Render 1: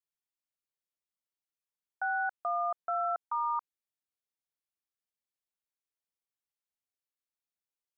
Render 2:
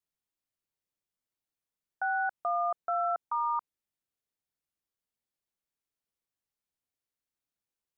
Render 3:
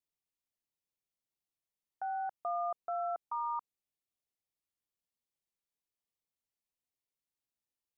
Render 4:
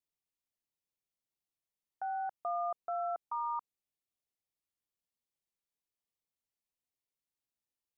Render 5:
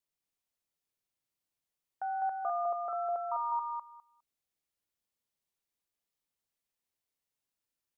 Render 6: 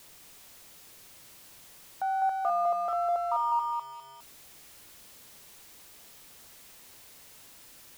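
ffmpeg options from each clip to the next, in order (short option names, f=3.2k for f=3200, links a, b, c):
-af "lowshelf=f=490:g=7.5"
-af "equalizer=f=1.5k:w=5:g=-14.5,volume=-4dB"
-af anull
-af "aecho=1:1:204|408|612:0.668|0.107|0.0171,volume=1.5dB"
-af "aeval=exprs='val(0)+0.5*0.00316*sgn(val(0))':c=same,volume=5dB"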